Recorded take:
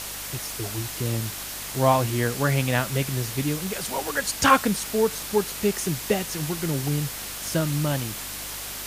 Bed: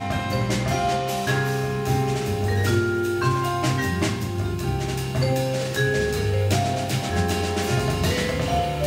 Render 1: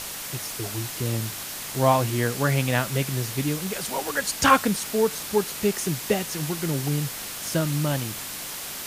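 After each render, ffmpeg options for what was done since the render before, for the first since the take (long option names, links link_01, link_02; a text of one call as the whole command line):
ffmpeg -i in.wav -af "bandreject=frequency=50:width_type=h:width=4,bandreject=frequency=100:width_type=h:width=4" out.wav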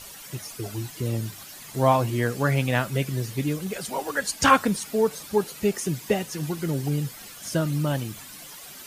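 ffmpeg -i in.wav -af "afftdn=noise_reduction=12:noise_floor=-35" out.wav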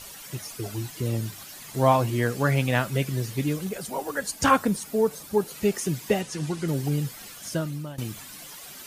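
ffmpeg -i in.wav -filter_complex "[0:a]asettb=1/sr,asplit=3[link_01][link_02][link_03];[link_01]atrim=end=3.694[link_04];[link_02]atrim=start=3.69:end=5.51,asetpts=PTS-STARTPTS,afade=type=in:duration=0.004:curve=qsin,afade=type=out:start_time=1.816:duration=0.004:curve=qsin,equalizer=frequency=3000:width=0.44:gain=-5.5[link_05];[link_03]atrim=start=5.506[link_06];[link_04][link_05]acrossfade=duration=0.004:curve1=hsin:curve2=qsin[link_07];[link_07][link_06]acrossfade=duration=0.004:curve1=qsin:curve2=hsin,asettb=1/sr,asplit=3[link_08][link_09][link_10];[link_08]atrim=end=6.214[link_11];[link_09]atrim=start=6.21:end=6.68,asetpts=PTS-STARTPTS,afade=type=in:duration=0.004:curve=qsin,afade=type=out:start_time=0.466:duration=0.004:curve=qsin,lowpass=frequency=10000:width=0.5412,lowpass=frequency=10000:width=1.3066[link_12];[link_10]atrim=start=6.676[link_13];[link_11][link_12]acrossfade=duration=0.004:curve1=hsin:curve2=qsin[link_14];[link_14][link_13]acrossfade=duration=0.004:curve1=qsin:curve2=hsin,asplit=2[link_15][link_16];[link_15]atrim=end=7.98,asetpts=PTS-STARTPTS,afade=type=out:start_time=7.35:duration=0.63:silence=0.125893[link_17];[link_16]atrim=start=7.98,asetpts=PTS-STARTPTS,afade=type=in:duration=0.004:curve=hsin:silence=0.125893[link_18];[link_17][link_18]concat=n=2:v=0:a=1" out.wav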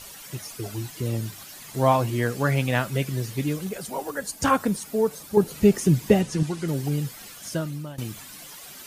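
ffmpeg -i in.wav -filter_complex "[0:a]asettb=1/sr,asplit=3[link_01][link_02][link_03];[link_01]atrim=end=4.104[link_04];[link_02]atrim=start=4.1:end=4.6,asetpts=PTS-STARTPTS,afade=type=in:duration=0.004:curve=qsin,afade=type=out:start_time=0.496:duration=0.004:curve=qsin,equalizer=frequency=2600:width_type=o:width=2.6:gain=-3.5[link_05];[link_03]atrim=start=4.596[link_06];[link_04][link_05]acrossfade=duration=0.004:curve1=hsin:curve2=qsin[link_07];[link_07][link_06]acrossfade=duration=0.004:curve1=qsin:curve2=hsin,asettb=1/sr,asplit=3[link_08][link_09][link_10];[link_08]atrim=end=5.374[link_11];[link_09]atrim=start=5.37:end=6.43,asetpts=PTS-STARTPTS,afade=type=in:duration=0.004:curve=qsin,afade=type=out:start_time=1.056:duration=0.004:curve=qsin,lowshelf=frequency=360:gain=11.5[link_12];[link_10]atrim=start=6.426[link_13];[link_11][link_12]acrossfade=duration=0.004:curve1=hsin:curve2=qsin[link_14];[link_14][link_13]acrossfade=duration=0.004:curve1=qsin:curve2=hsin" out.wav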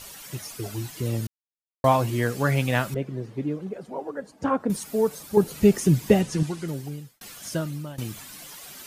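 ffmpeg -i in.wav -filter_complex "[0:a]asettb=1/sr,asplit=3[link_01][link_02][link_03];[link_01]atrim=end=2.944[link_04];[link_02]atrim=start=2.94:end=4.7,asetpts=PTS-STARTPTS,afade=type=in:duration=0.004:curve=qsin,afade=type=out:start_time=1.756:duration=0.004:curve=qsin,bandpass=frequency=380:width_type=q:width=0.67[link_05];[link_03]atrim=start=4.696[link_06];[link_04][link_05]acrossfade=duration=0.004:curve1=hsin:curve2=qsin[link_07];[link_07][link_06]acrossfade=duration=0.004:curve1=qsin:curve2=hsin,asplit=4[link_08][link_09][link_10][link_11];[link_08]atrim=end=1.27,asetpts=PTS-STARTPTS,afade=type=out:start_time=1.266:duration=0.004:curve=hsin[link_12];[link_09]atrim=start=1.27:end=1.84,asetpts=PTS-STARTPTS,volume=0[link_13];[link_10]atrim=start=1.84:end=7.21,asetpts=PTS-STARTPTS,afade=type=in:duration=0.004:curve=hsin,afade=type=out:start_time=4.54:duration=0.83[link_14];[link_11]atrim=start=7.21,asetpts=PTS-STARTPTS,afade=type=in:duration=0.004:curve=hsin[link_15];[link_12][link_13][link_14][link_15]concat=n=4:v=0:a=1" out.wav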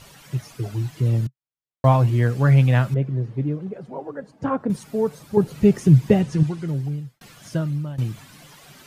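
ffmpeg -i in.wav -af "lowpass=frequency=3000:poles=1,equalizer=frequency=130:width=2.1:gain=11" out.wav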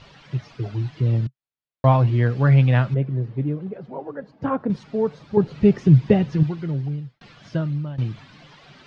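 ffmpeg -i in.wav -af "lowpass=frequency=4600:width=0.5412,lowpass=frequency=4600:width=1.3066" out.wav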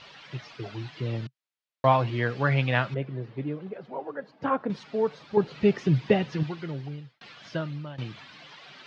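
ffmpeg -i in.wav -af "lowpass=3600,aemphasis=mode=production:type=riaa" out.wav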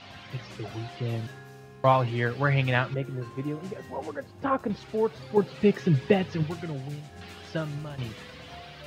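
ffmpeg -i in.wav -i bed.wav -filter_complex "[1:a]volume=-23dB[link_01];[0:a][link_01]amix=inputs=2:normalize=0" out.wav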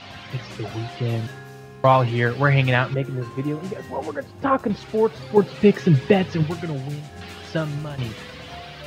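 ffmpeg -i in.wav -af "volume=6.5dB,alimiter=limit=-3dB:level=0:latency=1" out.wav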